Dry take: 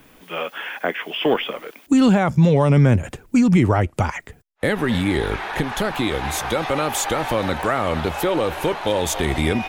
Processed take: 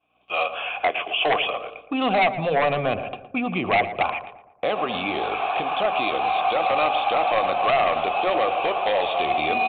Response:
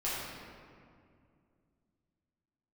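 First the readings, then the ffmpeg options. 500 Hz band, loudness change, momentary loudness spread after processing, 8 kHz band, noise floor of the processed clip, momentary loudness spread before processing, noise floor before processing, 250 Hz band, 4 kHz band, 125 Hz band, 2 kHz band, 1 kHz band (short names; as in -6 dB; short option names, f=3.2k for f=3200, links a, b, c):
-1.5 dB, -2.5 dB, 6 LU, under -40 dB, -51 dBFS, 10 LU, -51 dBFS, -12.0 dB, 0.0 dB, -18.0 dB, +0.5 dB, +4.5 dB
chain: -filter_complex "[0:a]equalizer=f=1.6k:w=2.3:g=-4.5,aeval=exprs='val(0)+0.00891*(sin(2*PI*60*n/s)+sin(2*PI*2*60*n/s)/2+sin(2*PI*3*60*n/s)/3+sin(2*PI*4*60*n/s)/4+sin(2*PI*5*60*n/s)/5)':c=same,asplit=3[a][b][c];[a]bandpass=f=730:t=q:w=8,volume=0dB[d];[b]bandpass=f=1.09k:t=q:w=8,volume=-6dB[e];[c]bandpass=f=2.44k:t=q:w=8,volume=-9dB[f];[d][e][f]amix=inputs=3:normalize=0,aresample=8000,aeval=exprs='0.15*sin(PI/2*2.51*val(0)/0.15)':c=same,aresample=44100,bandreject=f=57.17:t=h:w=4,bandreject=f=114.34:t=h:w=4,bandreject=f=171.51:t=h:w=4,bandreject=f=228.68:t=h:w=4,bandreject=f=285.85:t=h:w=4,bandreject=f=343.02:t=h:w=4,bandreject=f=400.19:t=h:w=4,bandreject=f=457.36:t=h:w=4,bandreject=f=514.53:t=h:w=4,bandreject=f=571.7:t=h:w=4,bandreject=f=628.87:t=h:w=4,agate=range=-33dB:threshold=-40dB:ratio=3:detection=peak,highshelf=f=2.6k:g=12,asplit=2[g][h];[h]adelay=115,lowpass=f=1.5k:p=1,volume=-11dB,asplit=2[i][j];[j]adelay=115,lowpass=f=1.5k:p=1,volume=0.5,asplit=2[k][l];[l]adelay=115,lowpass=f=1.5k:p=1,volume=0.5,asplit=2[m][n];[n]adelay=115,lowpass=f=1.5k:p=1,volume=0.5,asplit=2[o][p];[p]adelay=115,lowpass=f=1.5k:p=1,volume=0.5[q];[i][k][m][o][q]amix=inputs=5:normalize=0[r];[g][r]amix=inputs=2:normalize=0"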